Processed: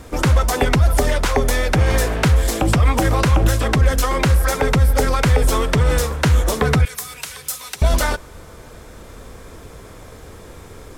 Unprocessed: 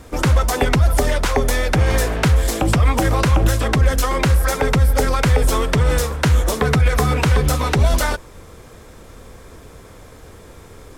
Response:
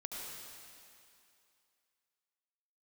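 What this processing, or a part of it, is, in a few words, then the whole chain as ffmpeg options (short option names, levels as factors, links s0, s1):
ducked reverb: -filter_complex "[0:a]asettb=1/sr,asplit=3[s0][s1][s2];[s0]atrim=end=6.854[s3];[s1]atrim=start=6.85:end=7.82,asetpts=PTS-STARTPTS,afade=t=in:d=0.004:c=qsin,afade=t=out:st=0.966:d=0.004:c=qsin,aderivative[s4];[s2]atrim=start=7.816[s5];[s3][s4]acrossfade=d=0.004:c1=hsin:c2=qsin[s6];[s6][s5]acrossfade=d=0.004:c1=qsin:c2=hsin,asplit=3[s7][s8][s9];[1:a]atrim=start_sample=2205[s10];[s8][s10]afir=irnorm=-1:irlink=0[s11];[s9]apad=whole_len=484045[s12];[s11][s12]sidechaincompress=threshold=0.0141:ratio=5:attack=16:release=792,volume=0.596[s13];[s7][s13]amix=inputs=2:normalize=0"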